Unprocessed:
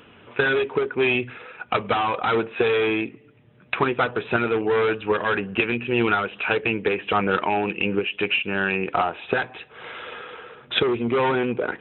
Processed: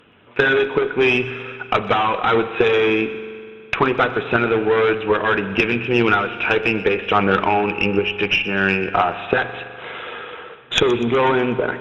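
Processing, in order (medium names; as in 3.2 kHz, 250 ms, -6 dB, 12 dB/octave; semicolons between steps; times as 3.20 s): tracing distortion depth 0.042 ms; gate -42 dBFS, range -7 dB; AM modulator 100 Hz, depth 15%; Chebyshev shaper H 6 -32 dB, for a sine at -6 dBFS; feedback echo behind a high-pass 123 ms, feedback 55%, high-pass 2.1 kHz, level -16 dB; spring tank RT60 2.4 s, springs 41 ms, chirp 50 ms, DRR 11.5 dB; trim +5.5 dB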